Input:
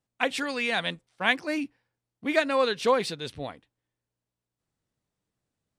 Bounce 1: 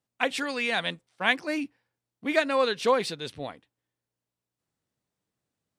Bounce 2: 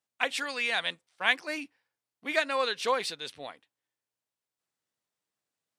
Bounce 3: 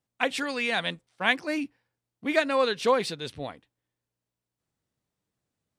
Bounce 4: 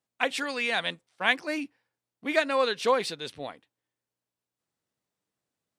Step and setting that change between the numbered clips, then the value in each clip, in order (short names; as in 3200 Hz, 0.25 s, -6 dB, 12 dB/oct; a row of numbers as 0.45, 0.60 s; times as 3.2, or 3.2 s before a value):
HPF, cutoff: 110, 950, 41, 310 Hz